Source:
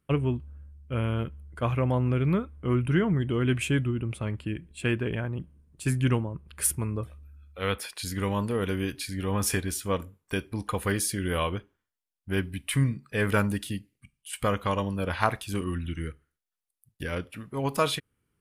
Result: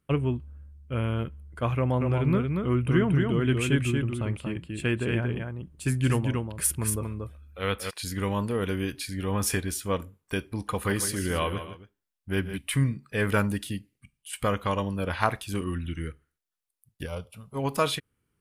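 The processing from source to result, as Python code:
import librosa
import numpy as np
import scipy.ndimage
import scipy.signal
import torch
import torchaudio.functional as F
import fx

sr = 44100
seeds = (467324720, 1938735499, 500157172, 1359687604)

y = fx.echo_single(x, sr, ms=233, db=-4.0, at=(2.0, 7.89), fade=0.02)
y = fx.echo_multitap(y, sr, ms=(124, 160, 273), db=(-19.0, -11.0, -17.5), at=(10.57, 12.58))
y = fx.fixed_phaser(y, sr, hz=740.0, stages=4, at=(17.05, 17.54), fade=0.02)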